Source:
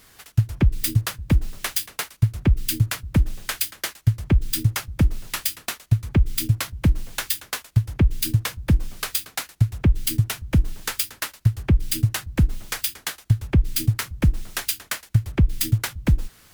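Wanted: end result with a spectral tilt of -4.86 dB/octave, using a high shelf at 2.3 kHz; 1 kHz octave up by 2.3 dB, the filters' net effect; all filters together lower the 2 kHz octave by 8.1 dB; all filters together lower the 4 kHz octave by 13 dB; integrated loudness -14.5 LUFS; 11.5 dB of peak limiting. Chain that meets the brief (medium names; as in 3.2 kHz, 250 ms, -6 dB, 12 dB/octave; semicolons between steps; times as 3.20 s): peaking EQ 1 kHz +7.5 dB; peaking EQ 2 kHz -7.5 dB; treble shelf 2.3 kHz -8.5 dB; peaking EQ 4 kHz -7 dB; trim +17 dB; peak limiter -2 dBFS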